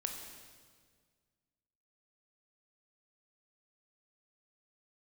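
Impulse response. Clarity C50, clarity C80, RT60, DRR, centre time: 5.0 dB, 6.0 dB, 1.7 s, 3.0 dB, 47 ms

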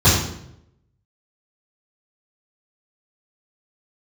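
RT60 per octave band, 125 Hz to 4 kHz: 1.0, 0.85, 0.85, 0.70, 0.65, 0.60 s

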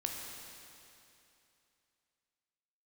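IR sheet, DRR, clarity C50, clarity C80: 0.5 dB, 1.5 dB, 2.5 dB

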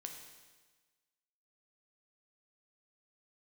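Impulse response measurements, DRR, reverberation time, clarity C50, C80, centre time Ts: 3.0 dB, 1.3 s, 5.5 dB, 7.0 dB, 37 ms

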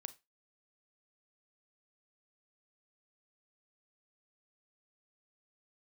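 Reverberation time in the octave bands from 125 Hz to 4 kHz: 0.20, 0.20, 0.20, 0.20, 0.25, 0.20 s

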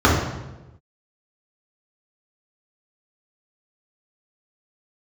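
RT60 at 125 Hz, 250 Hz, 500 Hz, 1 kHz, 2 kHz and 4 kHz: 1.3, 1.2, 1.2, 0.95, 0.90, 0.80 s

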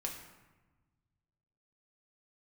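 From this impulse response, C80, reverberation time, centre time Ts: 8.0 dB, 1.2 s, 34 ms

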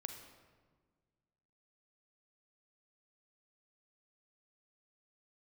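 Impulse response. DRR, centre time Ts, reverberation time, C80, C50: 5.5 dB, 30 ms, 1.6 s, 8.0 dB, 6.5 dB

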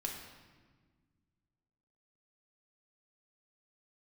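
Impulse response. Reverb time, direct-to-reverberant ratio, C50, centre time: 1.5 s, -1.0 dB, 4.0 dB, 47 ms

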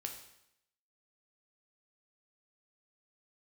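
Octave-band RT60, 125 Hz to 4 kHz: 0.80, 0.80, 0.80, 0.80, 0.80, 0.75 s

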